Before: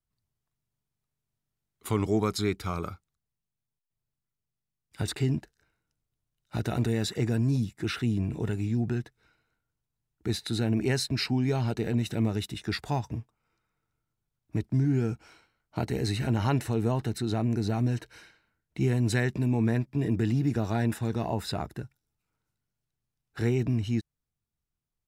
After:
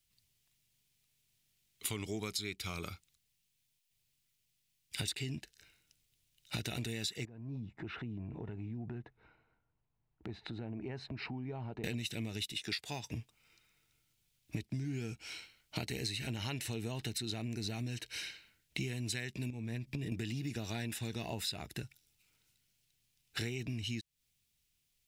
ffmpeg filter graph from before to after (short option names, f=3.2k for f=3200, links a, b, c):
-filter_complex "[0:a]asettb=1/sr,asplit=3[a][b][c];[a]atrim=end=7.254[d];[b]atrim=start=7.25:end=11.84,asetpts=PTS-STARTPTS,afade=t=in:d=0.004:c=qsin,afade=t=out:st=4.586:d=0.004:c=qsin,lowpass=f=980:t=q:w=2.1,acompressor=threshold=-48dB:ratio=2.5:attack=3.2:release=140:knee=1:detection=peak[e];[c]atrim=start=11.836[f];[d][e]acrossfade=d=0.004:c1=hsin:c2=qsin[g];[g][f]acrossfade=d=0.004:c1=qsin:c2=hsin,asettb=1/sr,asplit=3[h][i][j];[h]atrim=end=12.524[k];[i]atrim=start=12.52:end=13.14,asetpts=PTS-STARTPTS,afade=t=in:d=0.004:c=qsin,afade=t=out:st=0.616:d=0.004:c=qsin,highpass=f=180:p=1,equalizer=f=490:w=4.6:g=3.5[l];[j]atrim=start=13.136[m];[k][l]acrossfade=d=0.004:c1=hsin:c2=qsin[n];[n][m]acrossfade=d=0.004:c1=qsin:c2=hsin,asettb=1/sr,asplit=3[o][p][q];[o]atrim=end=19.504[r];[p]atrim=start=19.5:end=20.12,asetpts=PTS-STARTPTS,afade=t=in:d=0.004:c=qsin,afade=t=out:st=0.616:d=0.004:c=qsin,lowshelf=f=250:g=8,acompressor=threshold=-30dB:ratio=10:attack=3.2:release=140:knee=1:detection=peak[s];[q]atrim=start=20.116[t];[r][s]acrossfade=d=0.004:c1=hsin:c2=qsin[u];[u][t]acrossfade=d=0.004:c1=qsin:c2=hsin,highshelf=f=1.8k:t=q:w=1.5:g=12,acompressor=threshold=-38dB:ratio=8,volume=2dB"